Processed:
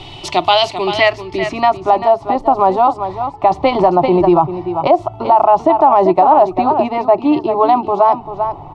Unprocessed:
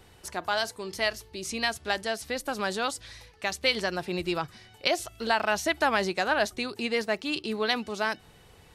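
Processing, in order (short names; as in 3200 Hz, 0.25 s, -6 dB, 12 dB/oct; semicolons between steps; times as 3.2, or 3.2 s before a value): in parallel at -1 dB: compressor, threshold -39 dBFS, peak gain reduction 18.5 dB; 3.46–3.88 on the sum: transient shaper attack +11 dB, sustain +7 dB; fixed phaser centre 320 Hz, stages 8; low-pass sweep 3200 Hz -> 970 Hz, 0.4–2.04; on a send: echo 0.391 s -11 dB; on the sum: maximiser +19.5 dB; gain -1 dB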